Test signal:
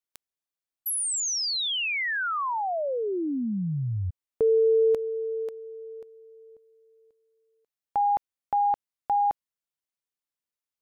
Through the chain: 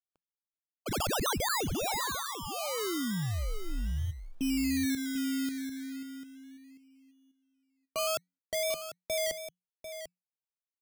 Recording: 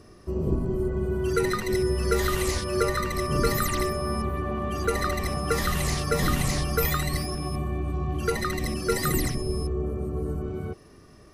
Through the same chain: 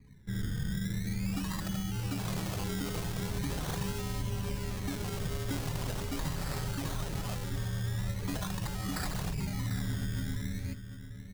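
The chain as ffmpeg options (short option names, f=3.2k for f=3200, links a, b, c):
-af "afftdn=nr=23:nf=-48,lowpass=f=12k:w=0.5412,lowpass=f=12k:w=1.3066,equalizer=f=1.2k:w=1.5:g=-13,alimiter=limit=-23dB:level=0:latency=1:release=39,acontrast=27,acrusher=bits=8:mode=log:mix=0:aa=0.000001,afreqshift=-180,acrusher=samples=20:mix=1:aa=0.000001:lfo=1:lforange=12:lforate=0.42,aecho=1:1:745:0.299,adynamicequalizer=threshold=0.00708:dfrequency=3100:dqfactor=0.7:tfrequency=3100:tqfactor=0.7:attack=5:release=100:ratio=0.375:range=3.5:mode=boostabove:tftype=highshelf,volume=-8.5dB"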